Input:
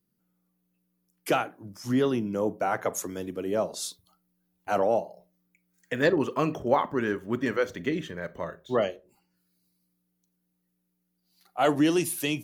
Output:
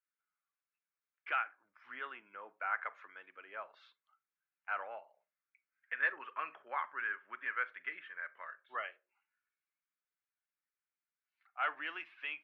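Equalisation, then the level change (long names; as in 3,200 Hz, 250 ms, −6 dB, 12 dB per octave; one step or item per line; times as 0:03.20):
flat-topped band-pass 1,800 Hz, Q 1.5
high-frequency loss of the air 350 metres
notch filter 1,900 Hz, Q 17
+1.5 dB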